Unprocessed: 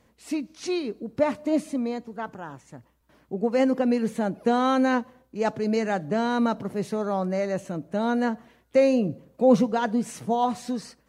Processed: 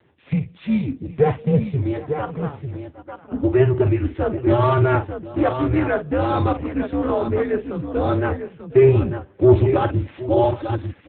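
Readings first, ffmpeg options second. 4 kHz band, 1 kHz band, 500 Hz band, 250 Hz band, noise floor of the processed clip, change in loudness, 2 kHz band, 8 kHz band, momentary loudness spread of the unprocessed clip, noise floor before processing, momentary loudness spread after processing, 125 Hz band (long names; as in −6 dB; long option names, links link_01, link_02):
−2.0 dB, +2.5 dB, +6.0 dB, +2.5 dB, −50 dBFS, +5.0 dB, +2.5 dB, below −35 dB, 12 LU, −64 dBFS, 12 LU, +17.5 dB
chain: -af "afreqshift=-140,aecho=1:1:45|763|897:0.299|0.119|0.376,aeval=exprs='0.531*(cos(1*acos(clip(val(0)/0.531,-1,1)))-cos(1*PI/2))+0.0335*(cos(2*acos(clip(val(0)/0.531,-1,1)))-cos(2*PI/2))':channel_layout=same,acontrast=82" -ar 8000 -c:a libopencore_amrnb -b:a 6700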